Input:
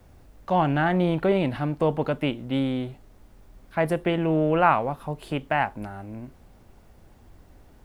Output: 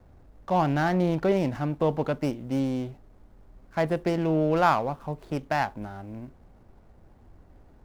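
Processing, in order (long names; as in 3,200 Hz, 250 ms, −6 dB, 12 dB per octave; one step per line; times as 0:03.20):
running median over 15 samples
level −1.5 dB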